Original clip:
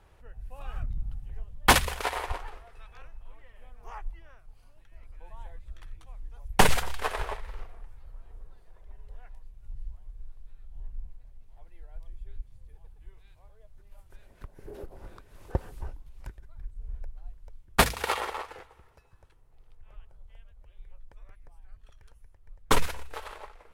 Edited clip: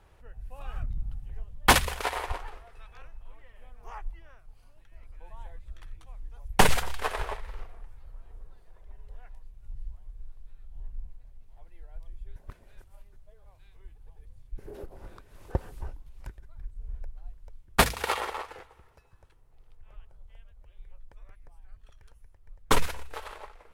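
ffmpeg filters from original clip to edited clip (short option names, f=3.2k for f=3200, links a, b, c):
-filter_complex "[0:a]asplit=3[a][b][c];[a]atrim=end=12.362[d];[b]atrim=start=12.358:end=14.582,asetpts=PTS-STARTPTS,areverse[e];[c]atrim=start=14.578[f];[d][e]acrossfade=d=0.004:c1=hsin:c2=hsin[g];[g][f]acrossfade=d=0.004:c1=hsin:c2=hsin"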